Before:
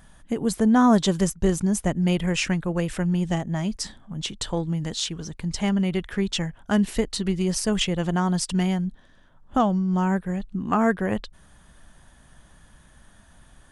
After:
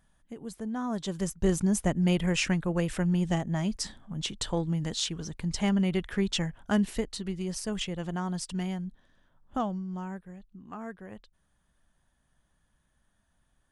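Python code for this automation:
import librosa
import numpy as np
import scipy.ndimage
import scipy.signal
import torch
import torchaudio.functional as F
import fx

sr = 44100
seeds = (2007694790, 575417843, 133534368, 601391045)

y = fx.gain(x, sr, db=fx.line((0.88, -16.0), (1.52, -3.0), (6.63, -3.0), (7.23, -9.5), (9.62, -9.5), (10.44, -19.5)))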